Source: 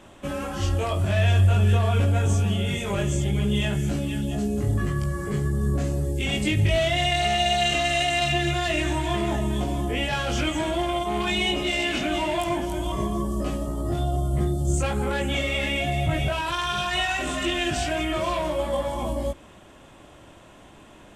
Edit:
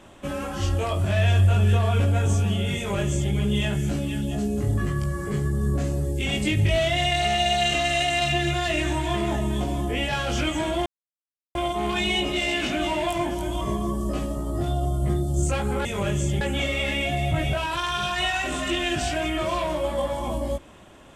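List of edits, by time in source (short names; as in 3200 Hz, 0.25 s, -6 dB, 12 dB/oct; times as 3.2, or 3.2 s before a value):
2.77–3.33 copy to 15.16
10.86 insert silence 0.69 s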